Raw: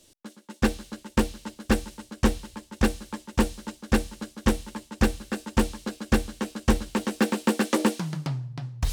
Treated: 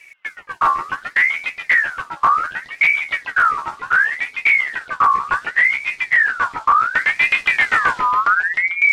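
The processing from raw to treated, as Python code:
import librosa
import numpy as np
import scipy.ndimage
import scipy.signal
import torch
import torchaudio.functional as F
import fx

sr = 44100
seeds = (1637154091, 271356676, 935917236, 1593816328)

p1 = fx.pitch_glide(x, sr, semitones=-6.5, runs='starting unshifted')
p2 = fx.tilt_eq(p1, sr, slope=-3.0)
p3 = fx.over_compress(p2, sr, threshold_db=-17.0, ratio=-1.0)
p4 = p2 + (p3 * 10.0 ** (1.0 / 20.0))
p5 = 10.0 ** (-8.5 / 20.0) * np.tanh(p4 / 10.0 ** (-8.5 / 20.0))
p6 = p5 + fx.echo_stepped(p5, sr, ms=138, hz=950.0, octaves=0.7, feedback_pct=70, wet_db=-2.0, dry=0)
p7 = fx.ring_lfo(p6, sr, carrier_hz=1700.0, swing_pct=35, hz=0.68)
y = p7 * 10.0 ** (2.0 / 20.0)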